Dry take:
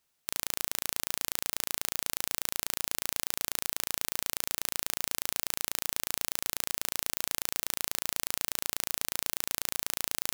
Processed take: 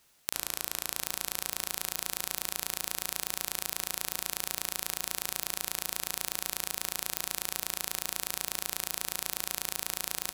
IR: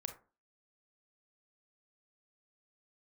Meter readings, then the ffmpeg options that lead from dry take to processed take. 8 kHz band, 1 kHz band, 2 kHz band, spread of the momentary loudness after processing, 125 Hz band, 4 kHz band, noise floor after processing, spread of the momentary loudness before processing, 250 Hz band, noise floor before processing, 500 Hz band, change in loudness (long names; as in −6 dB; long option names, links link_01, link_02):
−0.5 dB, +0.5 dB, −0.5 dB, 0 LU, −1.0 dB, −0.5 dB, −50 dBFS, 0 LU, −1.5 dB, −77 dBFS, −0.5 dB, −1.5 dB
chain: -filter_complex "[0:a]acompressor=threshold=-36dB:ratio=16,aecho=1:1:704|1408|2112|2816:0.266|0.0905|0.0308|0.0105,asplit=2[link_01][link_02];[1:a]atrim=start_sample=2205,asetrate=27342,aresample=44100[link_03];[link_02][link_03]afir=irnorm=-1:irlink=0,volume=2.5dB[link_04];[link_01][link_04]amix=inputs=2:normalize=0,volume=5dB"